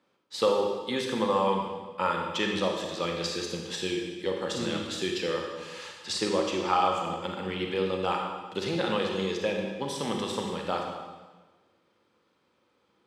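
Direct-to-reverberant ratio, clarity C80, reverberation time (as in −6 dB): 1.0 dB, 4.5 dB, 1.3 s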